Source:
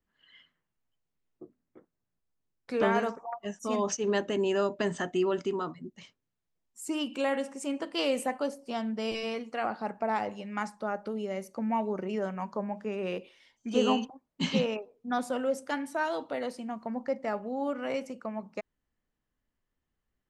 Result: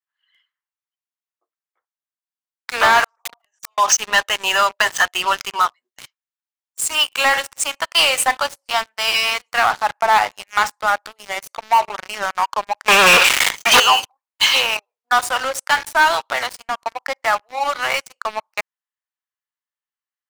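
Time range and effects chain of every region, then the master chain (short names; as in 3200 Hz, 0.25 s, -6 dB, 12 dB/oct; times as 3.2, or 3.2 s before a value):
3.04–3.78 flipped gate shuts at -32 dBFS, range -26 dB + wrapped overs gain 40.5 dB + sustainer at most 46 dB/s
12.88–13.8 bell 2200 Hz +6 dB 0.87 oct + sample leveller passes 5 + fast leveller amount 50%
whole clip: HPF 900 Hz 24 dB/oct; sample leveller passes 5; gain +4 dB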